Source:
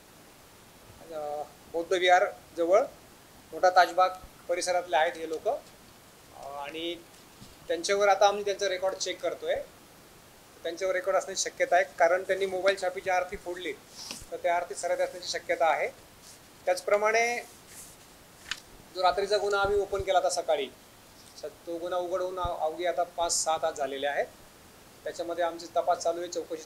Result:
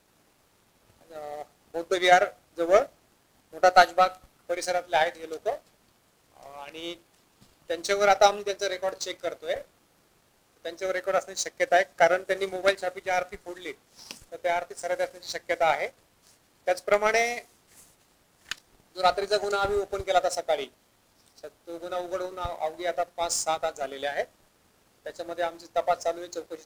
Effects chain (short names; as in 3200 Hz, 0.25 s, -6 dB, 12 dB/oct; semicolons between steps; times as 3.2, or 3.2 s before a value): power-law curve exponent 1.4; gain +6 dB